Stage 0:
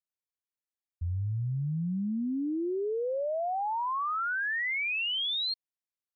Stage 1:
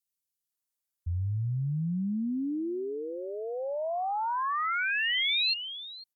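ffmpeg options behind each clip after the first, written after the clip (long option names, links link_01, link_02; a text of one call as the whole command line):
ffmpeg -i in.wav -filter_complex "[0:a]aemphasis=mode=production:type=cd,acrossover=split=450|2500[link_01][link_02][link_03];[link_01]adelay=50[link_04];[link_02]adelay=500[link_05];[link_04][link_05][link_03]amix=inputs=3:normalize=0,volume=1.5dB" out.wav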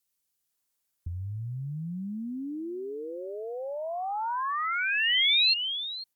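ffmpeg -i in.wav -filter_complex "[0:a]acrossover=split=1300|2700[link_01][link_02][link_03];[link_01]acompressor=threshold=-44dB:ratio=4[link_04];[link_02]acompressor=threshold=-43dB:ratio=4[link_05];[link_03]acompressor=threshold=-29dB:ratio=4[link_06];[link_04][link_05][link_06]amix=inputs=3:normalize=0,volume=7.5dB" out.wav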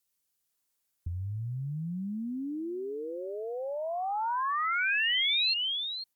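ffmpeg -i in.wav -af "alimiter=limit=-21.5dB:level=0:latency=1:release=24" out.wav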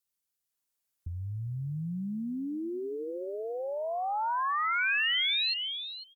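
ffmpeg -i in.wav -filter_complex "[0:a]dynaudnorm=framelen=440:gausssize=5:maxgain=6.5dB,asplit=2[link_01][link_02];[link_02]adelay=402.3,volume=-20dB,highshelf=frequency=4000:gain=-9.05[link_03];[link_01][link_03]amix=inputs=2:normalize=0,volume=-6dB" out.wav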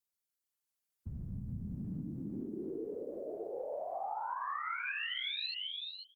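ffmpeg -i in.wav -af "afftfilt=real='hypot(re,im)*cos(2*PI*random(0))':imag='hypot(re,im)*sin(2*PI*random(1))':win_size=512:overlap=0.75,acompressor=threshold=-36dB:ratio=6,volume=1dB" out.wav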